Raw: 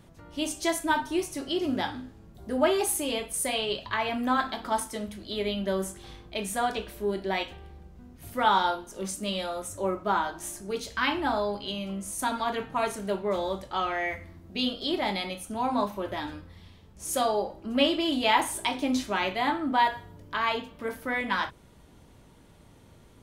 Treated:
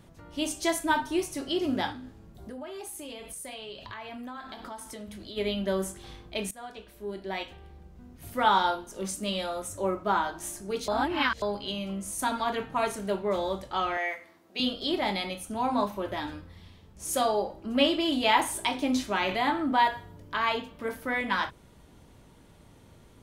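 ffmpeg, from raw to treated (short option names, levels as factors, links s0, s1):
-filter_complex "[0:a]asplit=3[s0][s1][s2];[s0]afade=t=out:st=1.92:d=0.02[s3];[s1]acompressor=threshold=0.0126:ratio=6:attack=3.2:release=140:knee=1:detection=peak,afade=t=in:st=1.92:d=0.02,afade=t=out:st=5.36:d=0.02[s4];[s2]afade=t=in:st=5.36:d=0.02[s5];[s3][s4][s5]amix=inputs=3:normalize=0,asettb=1/sr,asplit=3[s6][s7][s8];[s6]atrim=end=13.974[s9];[s7]atrim=start=13.97:end=14.6,asetpts=PTS-STARTPTS,afade=t=in:d=0.004:c=qsin,afade=t=out:st=0.626:d=0.004:c=qsin,highpass=470[s10];[s8]atrim=start=14.596[s11];[s9][s10]acrossfade=d=0.004:c1=hsin:c2=qsin[s12];[s12][s11]acrossfade=d=0.004:c1=qsin:c2=hsin,asettb=1/sr,asplit=3[s13][s14][s15];[s13]atrim=end=19.294[s16];[s14]atrim=start=19.29:end=19.87,asetpts=PTS-STARTPTS,afade=t=in:d=0.004:c=qsin,afade=t=out:st=0.576:d=0.004:c=qsin,acompressor=mode=upward:threshold=0.0631:ratio=2.5:attack=3.2:release=140:knee=2.83:detection=peak[s17];[s15]atrim=start=19.866[s18];[s16][s17]acrossfade=d=0.004:c1=hsin:c2=qsin[s19];[s19][s18]acrossfade=d=0.004:c1=qsin:c2=hsin,asplit=4[s20][s21][s22][s23];[s20]atrim=end=6.51,asetpts=PTS-STARTPTS,afade=t=out:st=6.506:d=0.004:c=hsin:silence=0.105925[s24];[s21]atrim=start=6.51:end=10.882,asetpts=PTS-STARTPTS,afade=t=in:d=1.63:silence=0.105925[s25];[s22]atrim=start=10.878:end=11.422,asetpts=PTS-STARTPTS,areverse[s26];[s23]atrim=start=11.418[s27];[s24][s25]concat=n=2:v=0:a=1[s28];[s28][s26]acrossfade=d=0.004:c1=hsin:c2=hsin[s29];[s29][s27]acrossfade=d=0.004:c1=hsin:c2=hsin"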